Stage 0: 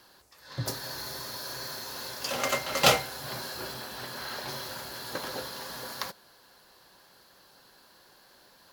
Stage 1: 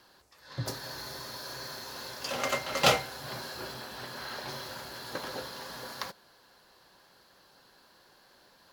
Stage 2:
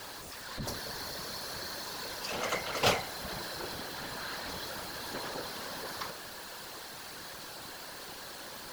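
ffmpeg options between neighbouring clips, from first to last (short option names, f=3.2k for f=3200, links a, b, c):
-af "highshelf=f=8k:g=-7,volume=-1.5dB"
-af "aeval=exprs='val(0)+0.5*0.0178*sgn(val(0))':c=same,afftfilt=real='hypot(re,im)*cos(2*PI*random(0))':imag='hypot(re,im)*sin(2*PI*random(1))':win_size=512:overlap=0.75,volume=1.5dB"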